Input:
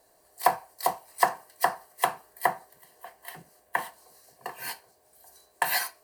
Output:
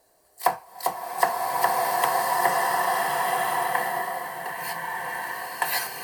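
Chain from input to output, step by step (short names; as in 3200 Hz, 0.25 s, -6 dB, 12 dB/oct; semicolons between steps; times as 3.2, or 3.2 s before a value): bloom reverb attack 1.45 s, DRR -5.5 dB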